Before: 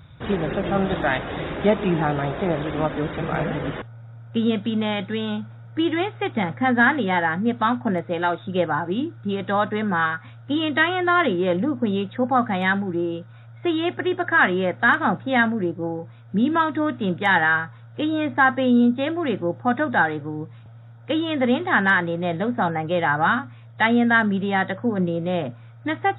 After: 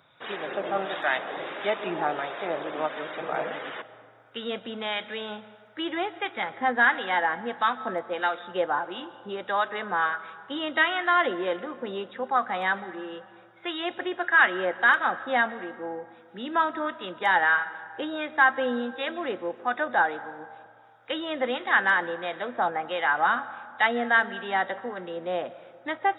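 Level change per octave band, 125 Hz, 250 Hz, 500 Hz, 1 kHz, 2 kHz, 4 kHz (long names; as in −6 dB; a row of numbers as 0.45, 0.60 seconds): below −20 dB, −14.0 dB, −6.0 dB, −3.0 dB, −2.5 dB, can't be measured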